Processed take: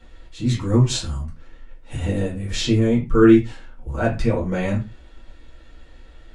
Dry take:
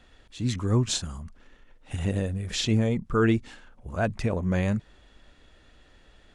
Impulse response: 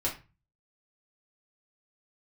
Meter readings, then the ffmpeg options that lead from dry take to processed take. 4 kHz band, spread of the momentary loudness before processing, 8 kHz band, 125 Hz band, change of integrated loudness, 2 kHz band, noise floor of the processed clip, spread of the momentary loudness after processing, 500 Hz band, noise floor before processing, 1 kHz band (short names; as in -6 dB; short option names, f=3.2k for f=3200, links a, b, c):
+3.5 dB, 14 LU, +2.0 dB, +5.0 dB, +7.0 dB, +4.0 dB, -46 dBFS, 20 LU, +8.0 dB, -57 dBFS, +4.5 dB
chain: -filter_complex "[1:a]atrim=start_sample=2205,atrim=end_sample=6174[a];[0:a][a]afir=irnorm=-1:irlink=0,volume=-1dB"